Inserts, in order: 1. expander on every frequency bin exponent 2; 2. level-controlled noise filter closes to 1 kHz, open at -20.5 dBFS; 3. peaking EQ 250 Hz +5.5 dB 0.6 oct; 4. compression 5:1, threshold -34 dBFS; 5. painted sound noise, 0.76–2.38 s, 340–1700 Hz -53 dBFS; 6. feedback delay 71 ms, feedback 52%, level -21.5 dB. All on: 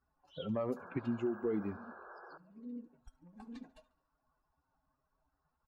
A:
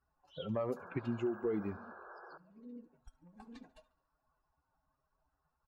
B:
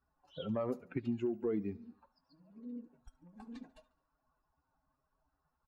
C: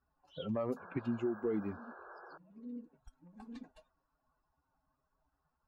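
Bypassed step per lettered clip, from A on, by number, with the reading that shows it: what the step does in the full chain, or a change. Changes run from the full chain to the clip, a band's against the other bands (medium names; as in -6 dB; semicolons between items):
3, 250 Hz band -2.0 dB; 5, 2 kHz band -5.5 dB; 6, echo-to-direct -20.0 dB to none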